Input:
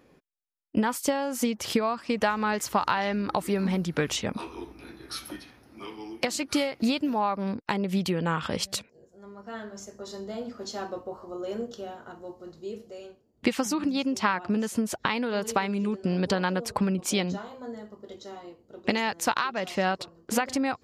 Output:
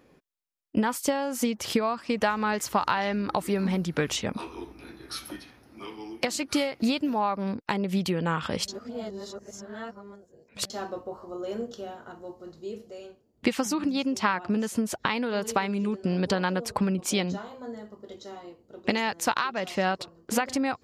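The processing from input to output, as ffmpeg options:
ffmpeg -i in.wav -filter_complex "[0:a]asplit=3[link_01][link_02][link_03];[link_01]atrim=end=8.682[link_04];[link_02]atrim=start=8.678:end=10.702,asetpts=PTS-STARTPTS,areverse[link_05];[link_03]atrim=start=10.698[link_06];[link_04][link_05]acrossfade=duration=0.004:curve1=hsin:curve2=hsin[link_07];[link_07][link_06]acrossfade=duration=0.004:curve1=hsin:curve2=hsin" out.wav

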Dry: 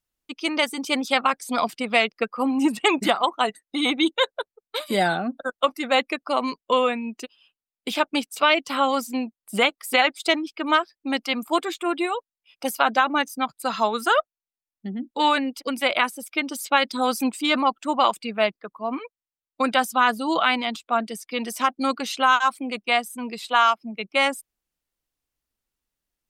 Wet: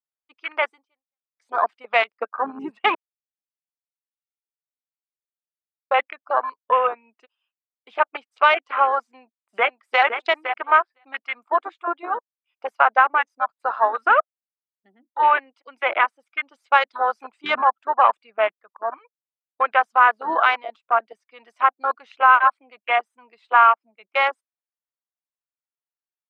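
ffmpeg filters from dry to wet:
ffmpeg -i in.wav -filter_complex "[0:a]asplit=2[link_01][link_02];[link_02]afade=type=in:start_time=9.02:duration=0.01,afade=type=out:start_time=10.02:duration=0.01,aecho=0:1:510|1020:0.421697|0.0421697[link_03];[link_01][link_03]amix=inputs=2:normalize=0,asplit=4[link_04][link_05][link_06][link_07];[link_04]atrim=end=1.37,asetpts=PTS-STARTPTS,afade=type=out:start_time=0.71:duration=0.66:curve=exp[link_08];[link_05]atrim=start=1.37:end=2.95,asetpts=PTS-STARTPTS,afade=type=in:duration=0.004:curve=hsin,afade=type=out:start_time=1.576:duration=0.004:curve=hsin[link_09];[link_06]atrim=start=2.95:end=5.91,asetpts=PTS-STARTPTS,volume=0[link_10];[link_07]atrim=start=5.91,asetpts=PTS-STARTPTS,afade=type=in:duration=0.004:curve=hsin[link_11];[link_08][link_09][link_10][link_11]concat=n=4:v=0:a=1,highpass=800,afwtdn=0.0447,lowpass=1700,volume=7dB" out.wav

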